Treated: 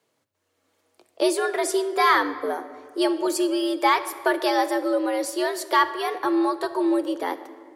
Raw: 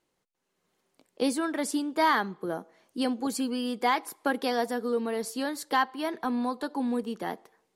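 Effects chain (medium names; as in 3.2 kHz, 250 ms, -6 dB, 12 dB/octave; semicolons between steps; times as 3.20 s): frequency shift +93 Hz; simulated room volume 2800 m³, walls mixed, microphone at 0.65 m; trim +5.5 dB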